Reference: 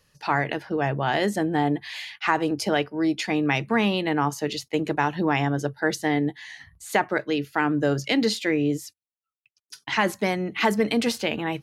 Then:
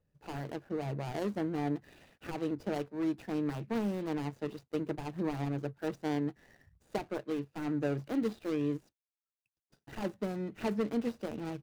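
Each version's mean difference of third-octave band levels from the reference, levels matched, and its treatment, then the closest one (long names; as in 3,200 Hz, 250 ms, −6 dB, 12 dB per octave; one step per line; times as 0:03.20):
6.0 dB: running median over 41 samples
level −8.5 dB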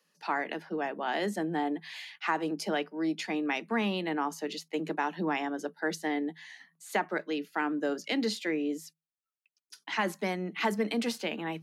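2.5 dB: Chebyshev high-pass filter 160 Hz, order 10
level −7 dB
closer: second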